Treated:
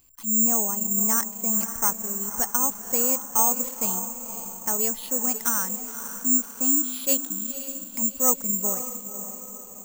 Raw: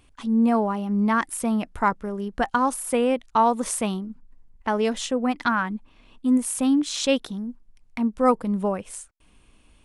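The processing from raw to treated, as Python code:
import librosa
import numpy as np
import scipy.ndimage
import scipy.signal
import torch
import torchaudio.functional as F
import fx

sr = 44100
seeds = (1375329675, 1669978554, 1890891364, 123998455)

y = fx.echo_diffused(x, sr, ms=523, feedback_pct=51, wet_db=-10)
y = (np.kron(scipy.signal.resample_poly(y, 1, 6), np.eye(6)[0]) * 6)[:len(y)]
y = y * librosa.db_to_amplitude(-9.5)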